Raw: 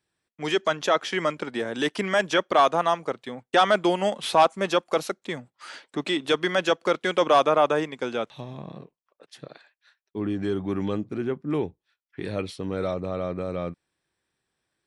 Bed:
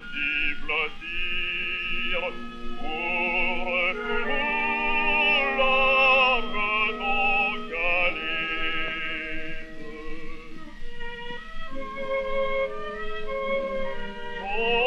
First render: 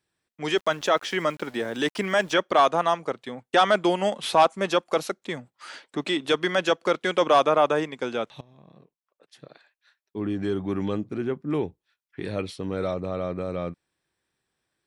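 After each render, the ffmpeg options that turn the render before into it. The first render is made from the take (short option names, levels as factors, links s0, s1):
-filter_complex "[0:a]asettb=1/sr,asplit=3[s0][s1][s2];[s0]atrim=end=0.574[s3];[s1]atrim=start=0.57:end=2.33,asetpts=PTS-STARTPTS,afade=t=in:d=0.004:c=qsin,afade=t=out:st=1.756:d=0.004:c=qsin,aeval=exprs='val(0)*gte(abs(val(0)),0.00501)':c=same[s4];[s2]atrim=start=2.326[s5];[s3][s4]acrossfade=d=0.004:c1=hsin:c2=qsin[s6];[s6][s5]acrossfade=d=0.004:c1=qsin:c2=hsin,asplit=2[s7][s8];[s7]atrim=end=8.41,asetpts=PTS-STARTPTS,afade=t=out:st=8.406:d=0.004:c=hsin:silence=0.1[s9];[s8]atrim=start=8.41,asetpts=PTS-STARTPTS,afade=t=in:d=1.97:silence=0.1[s10];[s9][s10]concat=n=2:v=0:a=1"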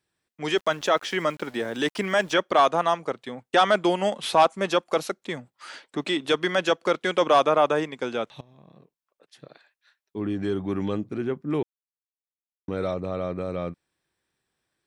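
-filter_complex "[0:a]asplit=3[s0][s1][s2];[s0]atrim=end=11.63,asetpts=PTS-STARTPTS,afade=t=out:st=11.626:d=0.004:c=hsin[s3];[s1]atrim=start=11.63:end=12.68,asetpts=PTS-STARTPTS,volume=0[s4];[s2]atrim=start=12.68,asetpts=PTS-STARTPTS,afade=t=in:d=0.004:c=hsin[s5];[s3][s4][s5]concat=n=3:v=0:a=1"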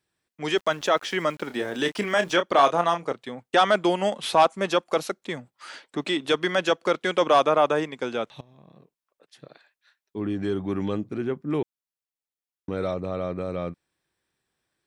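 -filter_complex "[0:a]asettb=1/sr,asplit=3[s0][s1][s2];[s0]atrim=end=1.474[s3];[s1]atrim=start=1.47:end=3.13,asetpts=PTS-STARTPTS,afade=t=in:d=0.004:c=qsin,afade=t=out:st=1.656:d=0.004:c=qsin,asplit=2[s4][s5];[s5]adelay=29,volume=0.355[s6];[s4][s6]amix=inputs=2:normalize=0,atrim=end_sample=73206[s7];[s2]atrim=start=3.126[s8];[s3][s7]acrossfade=d=0.004:c1=hsin:c2=qsin[s9];[s9][s8]acrossfade=d=0.004:c1=qsin:c2=hsin"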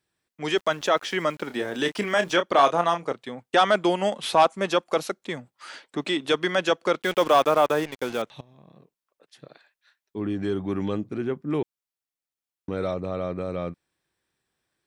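-filter_complex "[0:a]asettb=1/sr,asplit=3[s0][s1][s2];[s0]atrim=end=7.024[s3];[s1]atrim=start=7.02:end=8.22,asetpts=PTS-STARTPTS,afade=t=in:d=0.004:c=qsin,afade=t=out:st=1.196:d=0.004:c=qsin,acrusher=bits=5:mix=0:aa=0.5[s4];[s2]atrim=start=8.216[s5];[s3][s4]acrossfade=d=0.004:c1=hsin:c2=qsin[s6];[s6][s5]acrossfade=d=0.004:c1=qsin:c2=hsin"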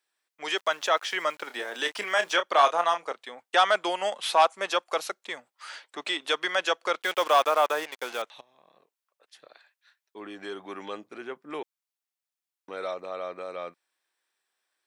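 -af "highpass=680"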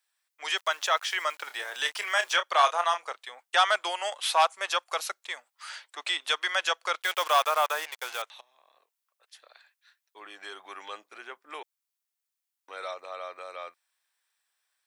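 -af "highpass=770,highshelf=f=6700:g=5.5"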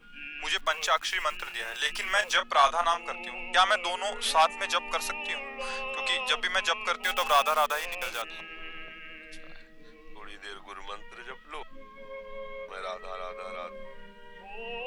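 -filter_complex "[1:a]volume=0.188[s0];[0:a][s0]amix=inputs=2:normalize=0"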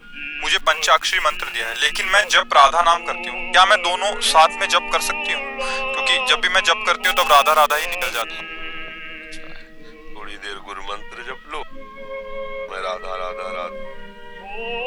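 -af "volume=3.55,alimiter=limit=0.891:level=0:latency=1"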